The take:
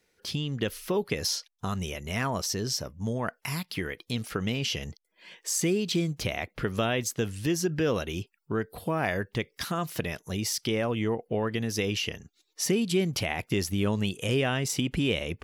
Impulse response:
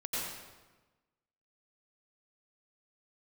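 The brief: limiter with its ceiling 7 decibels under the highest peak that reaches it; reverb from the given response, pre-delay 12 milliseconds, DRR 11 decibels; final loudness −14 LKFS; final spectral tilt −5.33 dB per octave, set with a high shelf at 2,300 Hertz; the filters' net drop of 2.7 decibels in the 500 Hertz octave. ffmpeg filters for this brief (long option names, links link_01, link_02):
-filter_complex "[0:a]equalizer=frequency=500:width_type=o:gain=-3,highshelf=frequency=2300:gain=-9,alimiter=limit=-22.5dB:level=0:latency=1,asplit=2[link_01][link_02];[1:a]atrim=start_sample=2205,adelay=12[link_03];[link_02][link_03]afir=irnorm=-1:irlink=0,volume=-15.5dB[link_04];[link_01][link_04]amix=inputs=2:normalize=0,volume=19.5dB"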